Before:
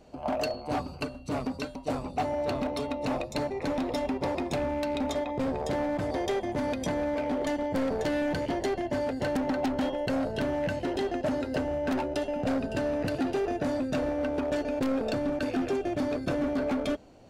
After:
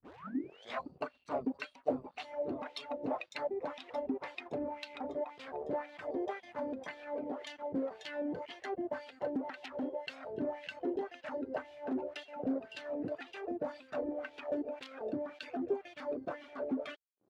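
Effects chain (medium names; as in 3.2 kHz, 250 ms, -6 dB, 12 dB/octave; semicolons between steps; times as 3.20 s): tape start-up on the opening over 0.87 s; reverb removal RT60 0.75 s; gain riding 0.5 s; crossover distortion -54 dBFS; wah-wah 1.9 Hz 310–3400 Hz, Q 2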